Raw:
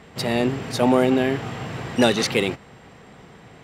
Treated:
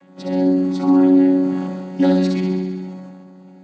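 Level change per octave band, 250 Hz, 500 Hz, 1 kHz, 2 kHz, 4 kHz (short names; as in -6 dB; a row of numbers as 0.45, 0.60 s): +8.5, -0.5, -3.0, -10.0, -11.0 dB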